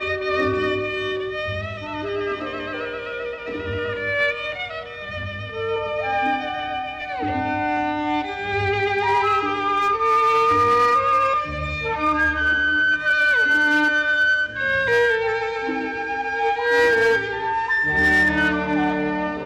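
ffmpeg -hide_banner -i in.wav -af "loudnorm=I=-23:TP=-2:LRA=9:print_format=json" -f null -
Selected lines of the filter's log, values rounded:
"input_i" : "-20.2",
"input_tp" : "-12.1",
"input_lra" : "7.4",
"input_thresh" : "-30.3",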